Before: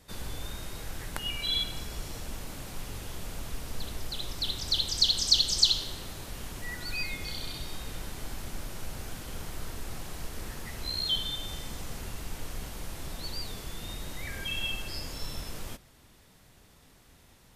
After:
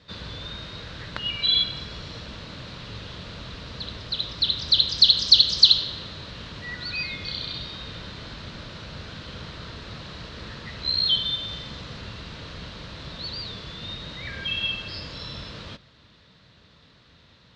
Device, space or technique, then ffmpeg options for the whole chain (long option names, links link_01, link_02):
guitar cabinet: -af "highpass=80,equalizer=frequency=260:width_type=q:width=4:gain=-4,equalizer=frequency=370:width_type=q:width=4:gain=-6,equalizer=frequency=780:width_type=q:width=4:gain=-10,equalizer=frequency=2200:width_type=q:width=4:gain=-3,equalizer=frequency=4000:width_type=q:width=4:gain=7,lowpass=frequency=4400:width=0.5412,lowpass=frequency=4400:width=1.3066,volume=6dB"